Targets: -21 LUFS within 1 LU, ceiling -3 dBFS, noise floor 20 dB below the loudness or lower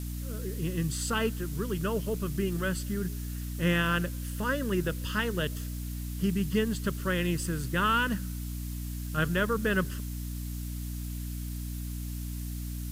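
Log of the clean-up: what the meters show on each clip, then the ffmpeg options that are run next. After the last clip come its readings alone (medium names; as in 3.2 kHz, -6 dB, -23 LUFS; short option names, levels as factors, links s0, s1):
hum 60 Hz; highest harmonic 300 Hz; hum level -33 dBFS; noise floor -36 dBFS; noise floor target -52 dBFS; loudness -31.5 LUFS; peak level -13.5 dBFS; loudness target -21.0 LUFS
-> -af "bandreject=f=60:t=h:w=4,bandreject=f=120:t=h:w=4,bandreject=f=180:t=h:w=4,bandreject=f=240:t=h:w=4,bandreject=f=300:t=h:w=4"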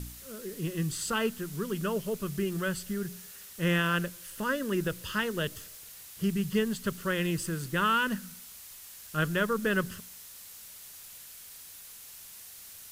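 hum not found; noise floor -48 dBFS; noise floor target -51 dBFS
-> -af "afftdn=nr=6:nf=-48"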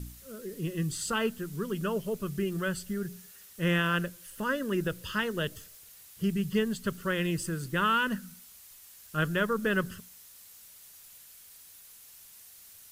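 noise floor -53 dBFS; loudness -31.0 LUFS; peak level -14.5 dBFS; loudness target -21.0 LUFS
-> -af "volume=3.16"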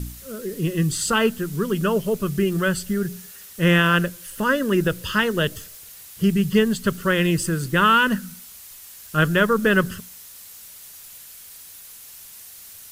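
loudness -21.0 LUFS; peak level -4.5 dBFS; noise floor -43 dBFS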